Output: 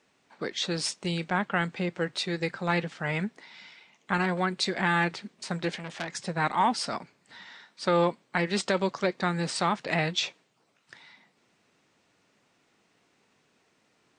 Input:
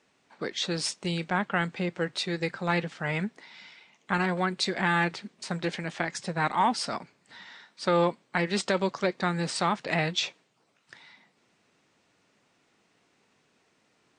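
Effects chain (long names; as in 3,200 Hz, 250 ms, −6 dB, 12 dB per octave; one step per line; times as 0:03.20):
0:05.76–0:06.26: saturating transformer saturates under 3,400 Hz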